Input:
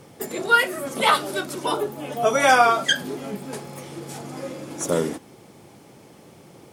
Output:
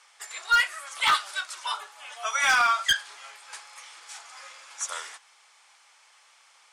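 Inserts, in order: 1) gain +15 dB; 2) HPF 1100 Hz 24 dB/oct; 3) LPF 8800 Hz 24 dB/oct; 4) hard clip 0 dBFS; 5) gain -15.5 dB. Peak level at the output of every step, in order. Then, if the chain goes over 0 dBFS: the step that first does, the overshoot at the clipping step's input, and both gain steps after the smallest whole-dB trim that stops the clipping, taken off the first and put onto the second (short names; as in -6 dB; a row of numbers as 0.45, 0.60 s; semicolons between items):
+12.0, +7.5, +8.0, 0.0, -15.5 dBFS; step 1, 8.0 dB; step 1 +7 dB, step 5 -7.5 dB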